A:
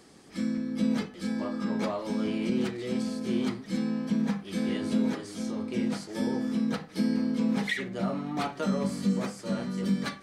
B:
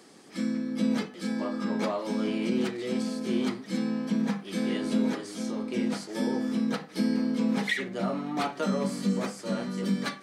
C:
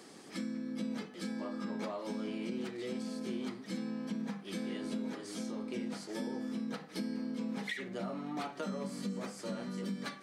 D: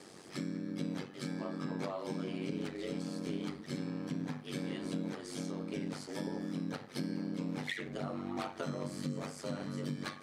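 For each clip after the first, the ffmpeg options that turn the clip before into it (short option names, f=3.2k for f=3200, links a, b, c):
-af "highpass=190,volume=2dB"
-af "acompressor=threshold=-39dB:ratio=3"
-af "aeval=exprs='val(0)*sin(2*PI*47*n/s)':c=same,volume=3dB"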